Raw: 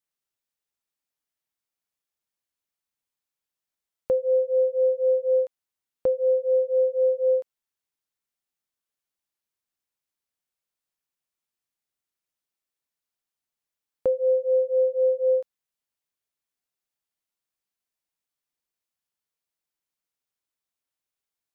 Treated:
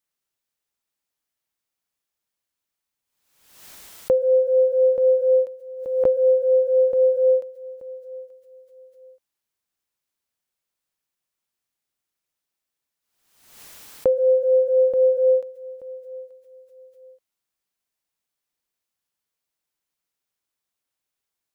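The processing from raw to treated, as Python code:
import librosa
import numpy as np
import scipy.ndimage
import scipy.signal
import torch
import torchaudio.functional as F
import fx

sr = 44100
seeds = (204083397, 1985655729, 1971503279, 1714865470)

p1 = x + fx.echo_feedback(x, sr, ms=880, feedback_pct=28, wet_db=-19.5, dry=0)
p2 = fx.pre_swell(p1, sr, db_per_s=65.0)
y = F.gain(torch.from_numpy(p2), 4.0).numpy()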